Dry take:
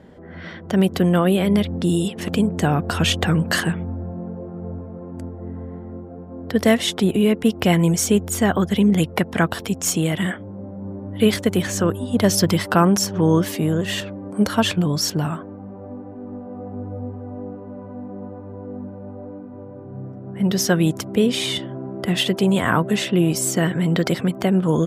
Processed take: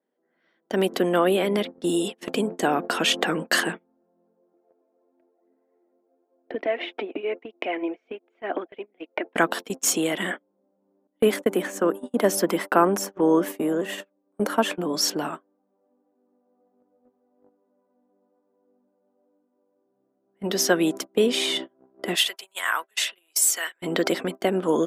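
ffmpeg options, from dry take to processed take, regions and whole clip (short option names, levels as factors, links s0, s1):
-filter_complex "[0:a]asettb=1/sr,asplit=3[s0][s1][s2];[s0]atrim=end=4.534[s3];[s1]atrim=start=4.53:end=9.35,asetpts=PTS-STARTPTS,afade=t=in:d=0.004:c=qsin,afade=t=out:st=4.816:d=0.004:c=qsin,acompressor=threshold=0.0794:ratio=12:attack=3.2:release=140:knee=1:detection=peak,aphaser=in_gain=1:out_gain=1:delay=4.8:decay=0.37:speed=1:type=triangular,highpass=f=290:w=0.5412,highpass=f=290:w=1.3066,equalizer=f=310:t=q:w=4:g=7,equalizer=f=660:t=q:w=4:g=6,equalizer=f=1100:t=q:w=4:g=-3,equalizer=f=2400:t=q:w=4:g=8,lowpass=f=2700:w=0.5412,lowpass=f=2700:w=1.3066[s4];[s2]atrim=start=9.346[s5];[s3][s4]acrossfade=d=0.004:c1=hsin:c2=qsin[s6];[s6][s5]acrossfade=d=0.004:c1=qsin:c2=hsin,asettb=1/sr,asplit=3[s7][s8][s9];[s7]atrim=end=11.074[s10];[s8]atrim=start=11.07:end=14.94,asetpts=PTS-STARTPTS,afade=t=in:d=0.004:c=qsin,afade=t=out:st=3.866:d=0.004:c=qsin,highpass=f=140:w=0.5412,highpass=f=140:w=1.3066,agate=range=0.0224:threshold=0.0355:ratio=3:release=100:detection=peak,equalizer=f=4400:w=0.96:g=-11[s11];[s9]atrim=start=14.936[s12];[s10][s11]acrossfade=d=0.004:c1=hsin:c2=qsin[s13];[s13][s12]acrossfade=d=0.004:c1=qsin:c2=hsin,asettb=1/sr,asplit=3[s14][s15][s16];[s14]atrim=end=22.154[s17];[s15]atrim=start=22.15:end=23.82,asetpts=PTS-STARTPTS,afade=t=in:d=0.004:c=qsin,afade=t=out:st=1.666:d=0.004:c=qsin,highpass=1400,highshelf=f=8500:g=8[s18];[s16]atrim=start=23.816[s19];[s17][s18]acrossfade=d=0.004:c1=hsin:c2=qsin[s20];[s20][s19]acrossfade=d=0.004:c1=qsin:c2=hsin,highpass=f=270:w=0.5412,highpass=f=270:w=1.3066,agate=range=0.0282:threshold=0.0355:ratio=16:detection=peak,adynamicequalizer=threshold=0.0141:dfrequency=3400:dqfactor=0.7:tfrequency=3400:tqfactor=0.7:attack=5:release=100:ratio=0.375:range=2:mode=cutabove:tftype=highshelf"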